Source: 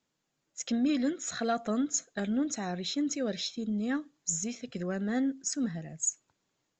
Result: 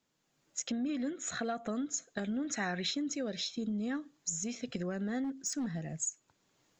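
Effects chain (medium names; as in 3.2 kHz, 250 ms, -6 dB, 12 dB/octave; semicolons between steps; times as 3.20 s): recorder AGC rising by 14 dB/s; 0.69–1.69 s: peaking EQ 5.1 kHz -8 dB 0.67 oct; 5.24–5.88 s: overload inside the chain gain 27.5 dB; compression 4:1, threshold -33 dBFS, peak gain reduction 8 dB; 2.44–2.91 s: peaking EQ 1.8 kHz +11 dB 1.2 oct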